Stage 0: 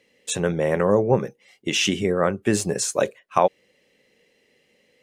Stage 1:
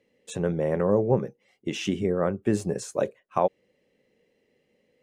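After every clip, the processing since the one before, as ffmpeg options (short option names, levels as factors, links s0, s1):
-af "tiltshelf=f=1200:g=6,volume=0.398"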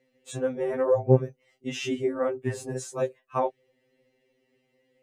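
-af "afftfilt=real='re*2.45*eq(mod(b,6),0)':imag='im*2.45*eq(mod(b,6),0)':win_size=2048:overlap=0.75,volume=1.19"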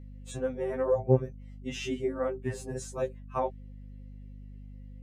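-af "aeval=exprs='val(0)+0.01*(sin(2*PI*50*n/s)+sin(2*PI*2*50*n/s)/2+sin(2*PI*3*50*n/s)/3+sin(2*PI*4*50*n/s)/4+sin(2*PI*5*50*n/s)/5)':c=same,volume=0.631"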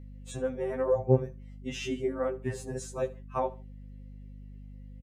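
-af "aecho=1:1:74|148:0.106|0.0297"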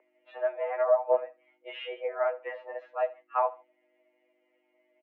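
-af "highpass=f=460:t=q:w=0.5412,highpass=f=460:t=q:w=1.307,lowpass=f=2500:t=q:w=0.5176,lowpass=f=2500:t=q:w=0.7071,lowpass=f=2500:t=q:w=1.932,afreqshift=110,volume=1.68"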